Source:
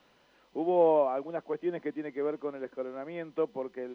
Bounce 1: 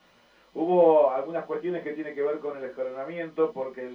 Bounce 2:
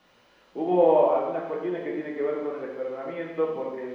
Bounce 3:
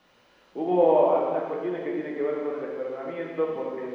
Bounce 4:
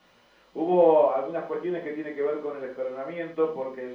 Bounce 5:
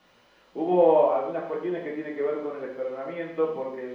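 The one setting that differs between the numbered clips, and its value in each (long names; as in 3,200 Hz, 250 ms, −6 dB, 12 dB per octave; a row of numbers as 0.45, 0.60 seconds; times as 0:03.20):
reverb whose tail is shaped and stops, gate: 90, 340, 530, 140, 220 milliseconds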